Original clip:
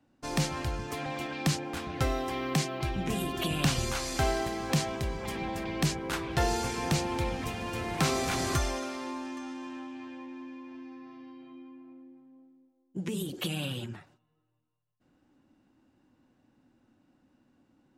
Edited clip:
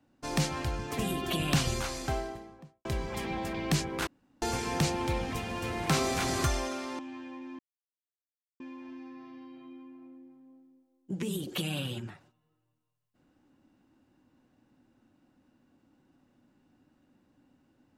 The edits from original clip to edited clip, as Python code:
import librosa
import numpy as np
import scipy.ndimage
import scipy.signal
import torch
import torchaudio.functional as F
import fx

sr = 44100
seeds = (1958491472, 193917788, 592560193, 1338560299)

y = fx.studio_fade_out(x, sr, start_s=3.72, length_s=1.24)
y = fx.edit(y, sr, fx.cut(start_s=0.98, length_s=2.11),
    fx.room_tone_fill(start_s=6.18, length_s=0.35),
    fx.cut(start_s=9.1, length_s=0.76),
    fx.insert_silence(at_s=10.46, length_s=1.01), tone=tone)